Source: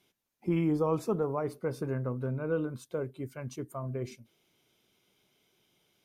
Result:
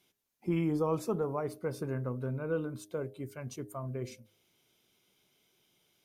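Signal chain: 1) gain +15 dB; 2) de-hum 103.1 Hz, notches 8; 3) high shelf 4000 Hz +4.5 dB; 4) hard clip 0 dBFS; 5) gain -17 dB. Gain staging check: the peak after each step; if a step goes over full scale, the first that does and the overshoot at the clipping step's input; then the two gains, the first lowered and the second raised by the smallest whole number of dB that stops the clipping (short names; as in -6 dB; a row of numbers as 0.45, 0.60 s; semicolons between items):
-3.0, -3.0, -3.0, -3.0, -20.0 dBFS; no overload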